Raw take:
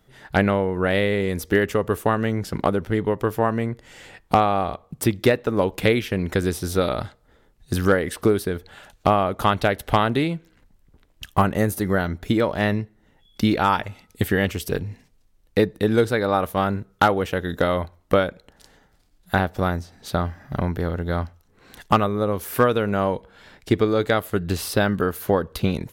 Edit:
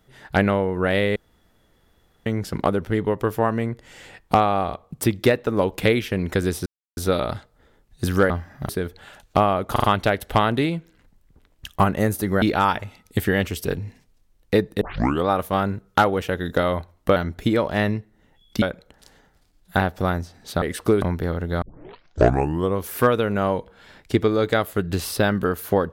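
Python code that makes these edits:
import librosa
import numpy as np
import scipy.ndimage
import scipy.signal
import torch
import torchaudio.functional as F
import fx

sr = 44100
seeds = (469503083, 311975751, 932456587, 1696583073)

y = fx.edit(x, sr, fx.room_tone_fill(start_s=1.16, length_s=1.1),
    fx.insert_silence(at_s=6.66, length_s=0.31),
    fx.swap(start_s=7.99, length_s=0.4, other_s=20.2, other_length_s=0.39),
    fx.stutter(start_s=9.42, slice_s=0.04, count=4),
    fx.move(start_s=12.0, length_s=1.46, to_s=18.2),
    fx.tape_start(start_s=15.85, length_s=0.46),
    fx.tape_start(start_s=21.19, length_s=1.17), tone=tone)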